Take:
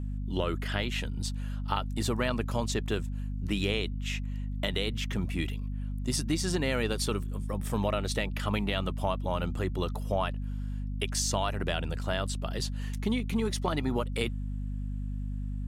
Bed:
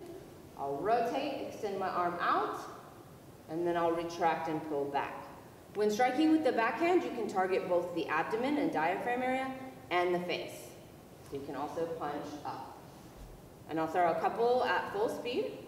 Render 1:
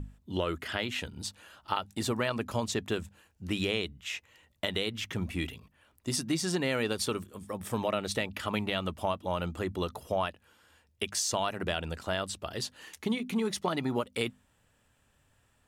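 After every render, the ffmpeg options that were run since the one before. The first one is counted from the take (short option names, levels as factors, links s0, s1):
-af "bandreject=f=50:t=h:w=6,bandreject=f=100:t=h:w=6,bandreject=f=150:t=h:w=6,bandreject=f=200:t=h:w=6,bandreject=f=250:t=h:w=6"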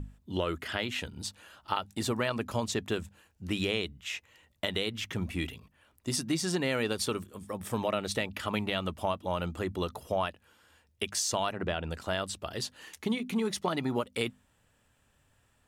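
-filter_complex "[0:a]asettb=1/sr,asplit=3[s0][s1][s2];[s0]atrim=end=11.514[s3];[s1]atrim=start=11.51:end=11.91,asetpts=PTS-STARTPTS,afade=t=in:d=0.004:c=qsin,afade=t=out:st=0.396:d=0.004:c=qsin,aemphasis=mode=reproduction:type=75fm[s4];[s2]atrim=start=11.906[s5];[s3][s4]acrossfade=d=0.004:c1=hsin:c2=qsin[s6];[s6][s5]acrossfade=d=0.004:c1=qsin:c2=hsin"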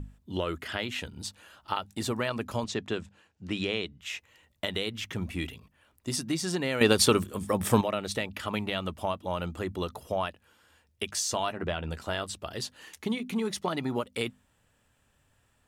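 -filter_complex "[0:a]asettb=1/sr,asplit=3[s0][s1][s2];[s0]atrim=end=2.644[s3];[s1]atrim=start=2.64:end=4.01,asetpts=PTS-STARTPTS,afade=t=in:d=0.004:c=qsin,afade=t=out:st=1.366:d=0.004:c=qsin,highpass=100,lowpass=6100[s4];[s2]atrim=start=4.006[s5];[s3][s4]acrossfade=d=0.004:c1=hsin:c2=qsin[s6];[s6][s5]acrossfade=d=0.004:c1=qsin:c2=hsin,asettb=1/sr,asplit=3[s7][s8][s9];[s7]atrim=end=11.084[s10];[s8]atrim=start=11.08:end=12.31,asetpts=PTS-STARTPTS,afade=t=in:d=0.004:c=qsin,afade=t=out:st=1.226:d=0.004:c=qsin,asplit=2[s11][s12];[s12]adelay=13,volume=0.299[s13];[s11][s13]amix=inputs=2:normalize=0,atrim=end_sample=54243[s14];[s9]atrim=start=12.306[s15];[s10][s14]acrossfade=d=0.004:c1=hsin:c2=qsin[s16];[s16][s15]acrossfade=d=0.004:c1=qsin:c2=hsin,asplit=3[s17][s18][s19];[s17]atrim=end=6.812[s20];[s18]atrim=start=6.808:end=7.812,asetpts=PTS-STARTPTS,volume=3.16[s21];[s19]atrim=start=7.808[s22];[s20][s21]acrossfade=d=0.004:c1=hsin:c2=hsin[s23];[s23][s22]acrossfade=d=0.004:c1=hsin:c2=hsin"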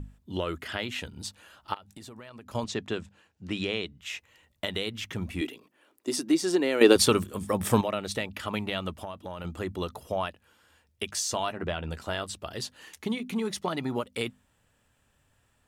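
-filter_complex "[0:a]asettb=1/sr,asplit=3[s0][s1][s2];[s0]atrim=end=1.744[s3];[s1]atrim=start=1.74:end=2.55,asetpts=PTS-STARTPTS,afade=t=in:d=0.004:c=qsin,afade=t=out:st=0.806:d=0.004:c=qsin,acompressor=threshold=0.00794:ratio=10:attack=3.2:release=140:knee=1:detection=peak[s4];[s2]atrim=start=2.546[s5];[s3][s4]acrossfade=d=0.004:c1=hsin:c2=qsin[s6];[s6][s5]acrossfade=d=0.004:c1=qsin:c2=hsin,asettb=1/sr,asplit=3[s7][s8][s9];[s7]atrim=end=5.414[s10];[s8]atrim=start=5.41:end=6.96,asetpts=PTS-STARTPTS,afade=t=in:d=0.004:c=qsin,afade=t=out:st=1.546:d=0.004:c=qsin,highpass=f=330:t=q:w=2.8[s11];[s9]atrim=start=6.956[s12];[s10][s11]acrossfade=d=0.004:c1=hsin:c2=qsin[s13];[s13][s12]acrossfade=d=0.004:c1=qsin:c2=hsin,asettb=1/sr,asplit=3[s14][s15][s16];[s14]atrim=end=8.914[s17];[s15]atrim=start=8.91:end=9.45,asetpts=PTS-STARTPTS,afade=t=in:d=0.004:c=qsin,afade=t=out:st=0.536:d=0.004:c=qsin,acompressor=threshold=0.0224:ratio=6:attack=3.2:release=140:knee=1:detection=peak[s18];[s16]atrim=start=9.446[s19];[s17][s18]acrossfade=d=0.004:c1=hsin:c2=qsin[s20];[s20][s19]acrossfade=d=0.004:c1=qsin:c2=hsin"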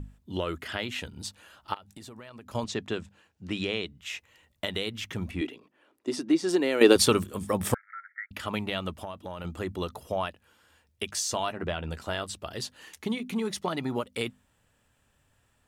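-filter_complex "[0:a]asettb=1/sr,asplit=3[s0][s1][s2];[s0]atrim=end=5.314[s3];[s1]atrim=start=5.31:end=6.49,asetpts=PTS-STARTPTS,afade=t=in:d=0.004:c=qsin,afade=t=out:st=1.176:d=0.004:c=qsin,aemphasis=mode=reproduction:type=50fm[s4];[s2]atrim=start=6.486[s5];[s3][s4]acrossfade=d=0.004:c1=hsin:c2=qsin[s6];[s6][s5]acrossfade=d=0.004:c1=qsin:c2=hsin,asettb=1/sr,asplit=3[s7][s8][s9];[s7]atrim=end=7.744[s10];[s8]atrim=start=7.74:end=8.31,asetpts=PTS-STARTPTS,afade=t=in:d=0.004:c=qsin,afade=t=out:st=0.566:d=0.004:c=qsin,asuperpass=centerf=1700:order=20:qfactor=2[s11];[s9]atrim=start=8.306[s12];[s10][s11]acrossfade=d=0.004:c1=hsin:c2=qsin[s13];[s13][s12]acrossfade=d=0.004:c1=qsin:c2=hsin"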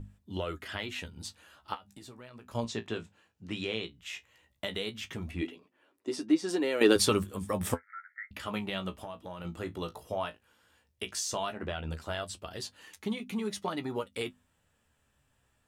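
-af "flanger=delay=9.7:depth=8.4:regen=41:speed=0.15:shape=sinusoidal"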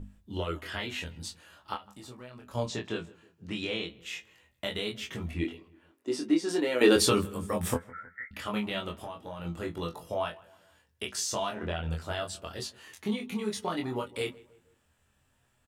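-filter_complex "[0:a]asplit=2[s0][s1];[s1]adelay=24,volume=0.75[s2];[s0][s2]amix=inputs=2:normalize=0,asplit=2[s3][s4];[s4]adelay=158,lowpass=f=1800:p=1,volume=0.0891,asplit=2[s5][s6];[s6]adelay=158,lowpass=f=1800:p=1,volume=0.47,asplit=2[s7][s8];[s8]adelay=158,lowpass=f=1800:p=1,volume=0.47[s9];[s3][s5][s7][s9]amix=inputs=4:normalize=0"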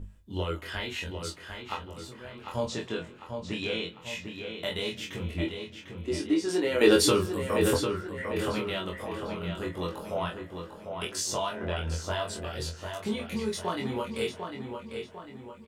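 -filter_complex "[0:a]asplit=2[s0][s1];[s1]adelay=22,volume=0.501[s2];[s0][s2]amix=inputs=2:normalize=0,asplit=2[s3][s4];[s4]adelay=749,lowpass=f=3900:p=1,volume=0.501,asplit=2[s5][s6];[s6]adelay=749,lowpass=f=3900:p=1,volume=0.48,asplit=2[s7][s8];[s8]adelay=749,lowpass=f=3900:p=1,volume=0.48,asplit=2[s9][s10];[s10]adelay=749,lowpass=f=3900:p=1,volume=0.48,asplit=2[s11][s12];[s12]adelay=749,lowpass=f=3900:p=1,volume=0.48,asplit=2[s13][s14];[s14]adelay=749,lowpass=f=3900:p=1,volume=0.48[s15];[s5][s7][s9][s11][s13][s15]amix=inputs=6:normalize=0[s16];[s3][s16]amix=inputs=2:normalize=0"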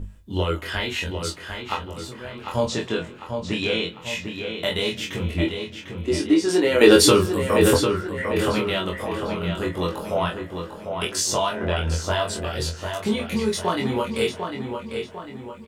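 -af "volume=2.51,alimiter=limit=0.794:level=0:latency=1"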